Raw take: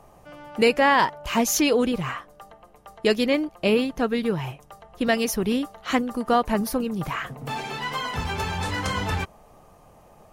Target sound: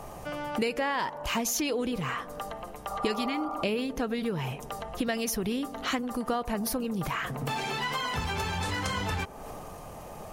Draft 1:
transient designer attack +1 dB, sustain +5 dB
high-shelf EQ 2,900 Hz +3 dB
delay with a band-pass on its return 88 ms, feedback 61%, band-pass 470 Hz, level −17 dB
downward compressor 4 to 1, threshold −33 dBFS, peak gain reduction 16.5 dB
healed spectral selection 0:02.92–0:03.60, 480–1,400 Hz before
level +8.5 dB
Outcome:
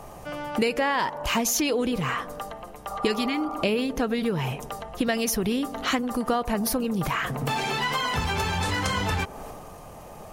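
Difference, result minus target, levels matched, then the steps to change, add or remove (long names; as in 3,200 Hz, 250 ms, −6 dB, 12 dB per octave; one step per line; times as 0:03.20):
downward compressor: peak gain reduction −5 dB
change: downward compressor 4 to 1, threshold −39.5 dBFS, peak gain reduction 21 dB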